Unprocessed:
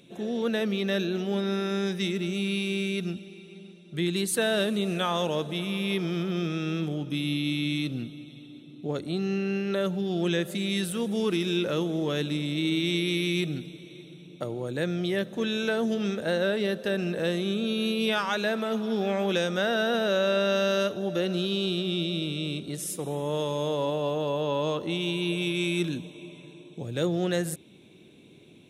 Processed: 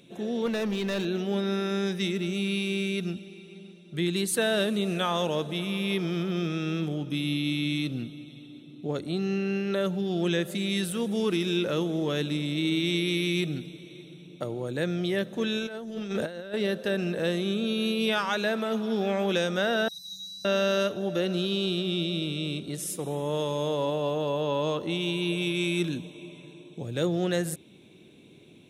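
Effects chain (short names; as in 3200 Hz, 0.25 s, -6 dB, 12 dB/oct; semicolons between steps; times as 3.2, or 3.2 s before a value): 0.46–1.05 hard clip -25 dBFS, distortion -27 dB; 15.59–16.54 negative-ratio compressor -32 dBFS, ratio -0.5; 19.88–20.45 brick-wall FIR band-stop 160–3800 Hz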